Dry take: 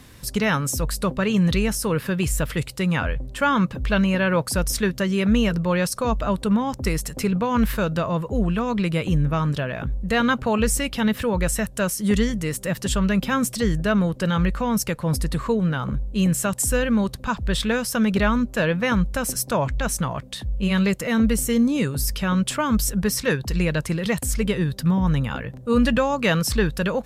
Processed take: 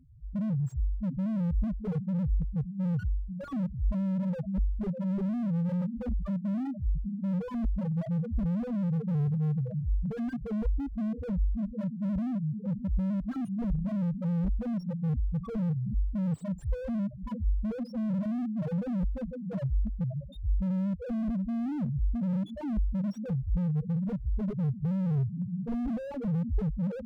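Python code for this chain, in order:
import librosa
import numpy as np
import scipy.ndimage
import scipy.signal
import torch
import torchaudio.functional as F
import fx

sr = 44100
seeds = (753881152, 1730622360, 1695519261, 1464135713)

y = fx.echo_diffused(x, sr, ms=563, feedback_pct=44, wet_db=-11.0)
y = fx.spec_topn(y, sr, count=1)
y = fx.slew_limit(y, sr, full_power_hz=5.9)
y = y * 10.0 ** (2.5 / 20.0)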